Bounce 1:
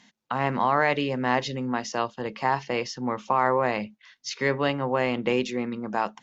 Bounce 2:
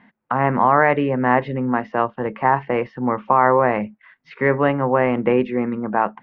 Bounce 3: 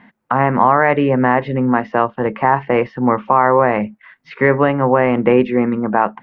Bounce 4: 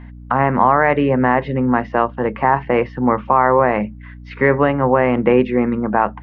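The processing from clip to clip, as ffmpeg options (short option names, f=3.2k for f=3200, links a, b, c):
-af "lowpass=f=2k:w=0.5412,lowpass=f=2k:w=1.3066,volume=7.5dB"
-af "alimiter=limit=-7dB:level=0:latency=1:release=247,volume=6dB"
-af "aeval=exprs='val(0)+0.02*(sin(2*PI*60*n/s)+sin(2*PI*2*60*n/s)/2+sin(2*PI*3*60*n/s)/3+sin(2*PI*4*60*n/s)/4+sin(2*PI*5*60*n/s)/5)':c=same,volume=-1dB"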